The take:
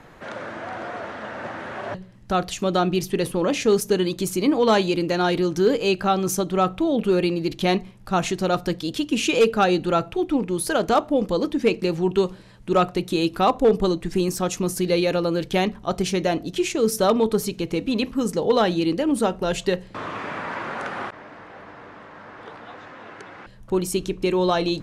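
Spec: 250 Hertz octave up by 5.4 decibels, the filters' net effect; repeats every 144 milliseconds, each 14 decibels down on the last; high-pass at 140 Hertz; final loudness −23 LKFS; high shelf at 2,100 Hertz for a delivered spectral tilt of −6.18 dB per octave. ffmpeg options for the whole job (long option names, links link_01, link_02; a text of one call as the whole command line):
ffmpeg -i in.wav -af "highpass=140,equalizer=frequency=250:width_type=o:gain=8.5,highshelf=frequency=2100:gain=-5,aecho=1:1:144|288:0.2|0.0399,volume=-3.5dB" out.wav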